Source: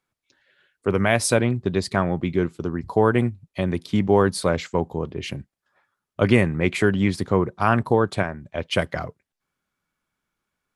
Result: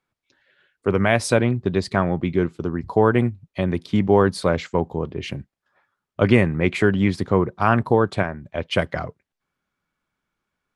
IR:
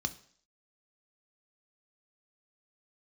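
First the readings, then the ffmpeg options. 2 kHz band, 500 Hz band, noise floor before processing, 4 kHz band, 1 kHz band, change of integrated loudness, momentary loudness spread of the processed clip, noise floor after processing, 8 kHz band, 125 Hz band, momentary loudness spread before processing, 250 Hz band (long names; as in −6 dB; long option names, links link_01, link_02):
+1.0 dB, +1.5 dB, −85 dBFS, −0.5 dB, +1.5 dB, +1.5 dB, 11 LU, −84 dBFS, −5.0 dB, +1.5 dB, 11 LU, +1.5 dB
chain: -af "highshelf=frequency=7500:gain=-12,volume=1.5dB"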